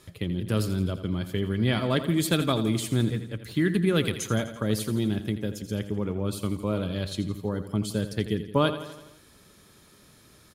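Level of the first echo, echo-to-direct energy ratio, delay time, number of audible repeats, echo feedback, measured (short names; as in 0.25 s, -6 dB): -12.0 dB, -10.0 dB, 84 ms, 5, 58%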